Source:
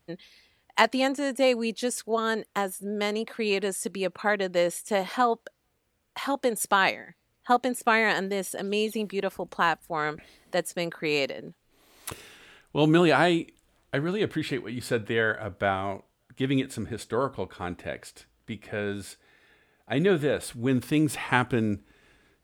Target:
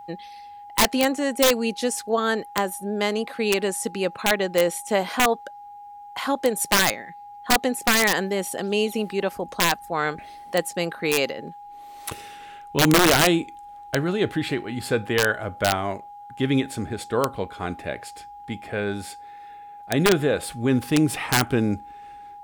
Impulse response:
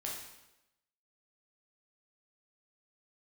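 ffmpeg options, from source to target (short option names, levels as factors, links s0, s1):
-af "aeval=exprs='val(0)+0.00708*sin(2*PI*820*n/s)':c=same,aeval=exprs='(mod(4.73*val(0)+1,2)-1)/4.73':c=same,volume=1.58"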